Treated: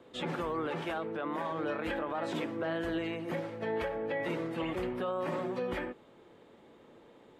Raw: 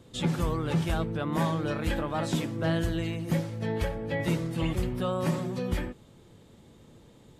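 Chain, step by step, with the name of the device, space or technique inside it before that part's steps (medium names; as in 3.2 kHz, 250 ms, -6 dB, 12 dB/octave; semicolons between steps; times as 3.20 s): DJ mixer with the lows and highs turned down (three-band isolator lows -20 dB, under 280 Hz, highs -17 dB, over 2.9 kHz; peak limiter -29 dBFS, peak gain reduction 11 dB); 0.67–1.52 s: high-pass 180 Hz 6 dB/octave; trim +3 dB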